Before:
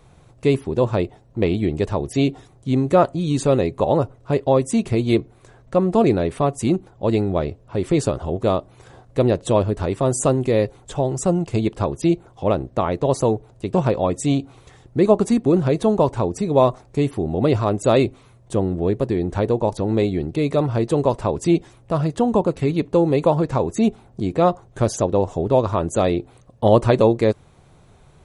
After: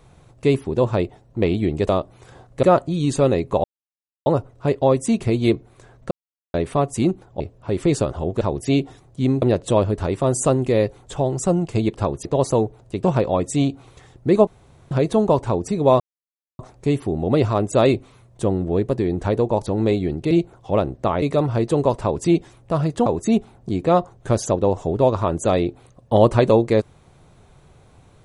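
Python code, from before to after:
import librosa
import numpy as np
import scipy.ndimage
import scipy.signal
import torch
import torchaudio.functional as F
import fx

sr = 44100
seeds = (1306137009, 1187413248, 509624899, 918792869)

y = fx.edit(x, sr, fx.swap(start_s=1.89, length_s=1.01, other_s=8.47, other_length_s=0.74),
    fx.insert_silence(at_s=3.91, length_s=0.62),
    fx.silence(start_s=5.76, length_s=0.43),
    fx.cut(start_s=7.05, length_s=0.41),
    fx.move(start_s=12.04, length_s=0.91, to_s=20.42),
    fx.room_tone_fill(start_s=15.17, length_s=0.44),
    fx.insert_silence(at_s=16.7, length_s=0.59),
    fx.cut(start_s=22.26, length_s=1.31), tone=tone)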